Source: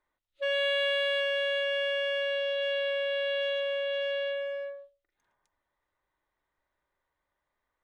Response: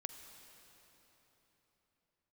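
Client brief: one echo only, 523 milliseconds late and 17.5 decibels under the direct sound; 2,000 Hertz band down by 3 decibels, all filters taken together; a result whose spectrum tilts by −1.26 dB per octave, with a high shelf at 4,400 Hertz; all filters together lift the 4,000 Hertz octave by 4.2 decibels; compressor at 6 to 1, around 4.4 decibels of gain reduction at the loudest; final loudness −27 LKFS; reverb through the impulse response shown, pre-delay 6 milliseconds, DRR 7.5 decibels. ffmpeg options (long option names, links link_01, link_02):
-filter_complex "[0:a]equalizer=frequency=2000:width_type=o:gain=-8.5,equalizer=frequency=4000:width_type=o:gain=7.5,highshelf=frequency=4400:gain=6.5,acompressor=threshold=-30dB:ratio=6,aecho=1:1:523:0.133,asplit=2[link_01][link_02];[1:a]atrim=start_sample=2205,adelay=6[link_03];[link_02][link_03]afir=irnorm=-1:irlink=0,volume=-4.5dB[link_04];[link_01][link_04]amix=inputs=2:normalize=0,volume=5dB"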